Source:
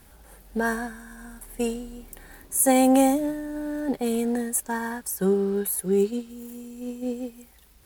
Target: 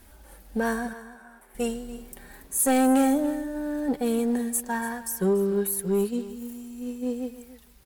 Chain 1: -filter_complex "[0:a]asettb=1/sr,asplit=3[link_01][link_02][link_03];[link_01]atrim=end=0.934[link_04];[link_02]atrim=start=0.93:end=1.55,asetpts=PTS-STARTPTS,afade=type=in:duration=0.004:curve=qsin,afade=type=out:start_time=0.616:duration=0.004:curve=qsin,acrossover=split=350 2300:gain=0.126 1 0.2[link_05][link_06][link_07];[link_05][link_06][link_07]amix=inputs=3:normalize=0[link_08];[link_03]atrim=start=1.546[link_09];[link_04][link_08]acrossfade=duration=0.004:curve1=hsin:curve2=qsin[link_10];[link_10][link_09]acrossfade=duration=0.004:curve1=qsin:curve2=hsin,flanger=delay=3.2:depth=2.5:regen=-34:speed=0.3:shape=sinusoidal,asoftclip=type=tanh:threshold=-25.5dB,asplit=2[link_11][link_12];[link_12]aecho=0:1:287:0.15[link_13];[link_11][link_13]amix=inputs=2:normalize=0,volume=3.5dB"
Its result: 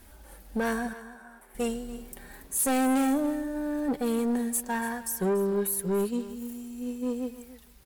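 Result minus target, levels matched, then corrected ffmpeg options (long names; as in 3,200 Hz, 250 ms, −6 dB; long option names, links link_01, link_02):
soft clipping: distortion +6 dB
-filter_complex "[0:a]asettb=1/sr,asplit=3[link_01][link_02][link_03];[link_01]atrim=end=0.934[link_04];[link_02]atrim=start=0.93:end=1.55,asetpts=PTS-STARTPTS,afade=type=in:duration=0.004:curve=qsin,afade=type=out:start_time=0.616:duration=0.004:curve=qsin,acrossover=split=350 2300:gain=0.126 1 0.2[link_05][link_06][link_07];[link_05][link_06][link_07]amix=inputs=3:normalize=0[link_08];[link_03]atrim=start=1.546[link_09];[link_04][link_08]acrossfade=duration=0.004:curve1=hsin:curve2=qsin[link_10];[link_10][link_09]acrossfade=duration=0.004:curve1=qsin:curve2=hsin,flanger=delay=3.2:depth=2.5:regen=-34:speed=0.3:shape=sinusoidal,asoftclip=type=tanh:threshold=-19dB,asplit=2[link_11][link_12];[link_12]aecho=0:1:287:0.15[link_13];[link_11][link_13]amix=inputs=2:normalize=0,volume=3.5dB"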